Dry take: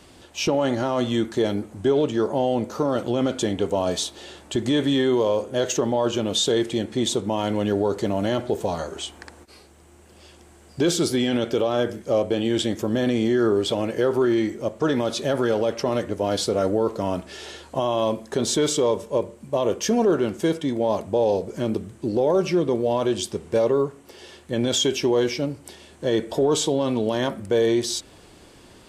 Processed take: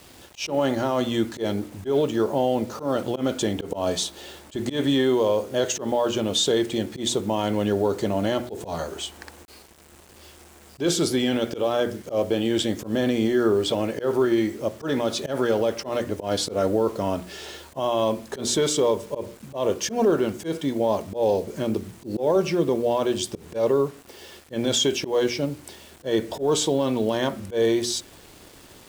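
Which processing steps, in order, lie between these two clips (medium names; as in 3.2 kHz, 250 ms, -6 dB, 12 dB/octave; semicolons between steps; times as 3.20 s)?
hum notches 60/120/180/240/300/360 Hz; word length cut 8-bit, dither none; slow attack 109 ms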